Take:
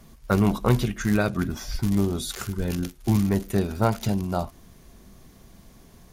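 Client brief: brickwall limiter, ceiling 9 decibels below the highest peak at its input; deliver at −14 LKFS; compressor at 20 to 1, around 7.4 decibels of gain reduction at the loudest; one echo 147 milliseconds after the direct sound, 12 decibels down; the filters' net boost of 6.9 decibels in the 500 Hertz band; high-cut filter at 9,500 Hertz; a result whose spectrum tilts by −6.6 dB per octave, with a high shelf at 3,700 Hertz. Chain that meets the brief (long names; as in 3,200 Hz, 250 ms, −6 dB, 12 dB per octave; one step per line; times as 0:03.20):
low-pass filter 9,500 Hz
parametric band 500 Hz +9 dB
high-shelf EQ 3,700 Hz −4 dB
downward compressor 20 to 1, threshold −19 dBFS
brickwall limiter −19.5 dBFS
single-tap delay 147 ms −12 dB
level +16 dB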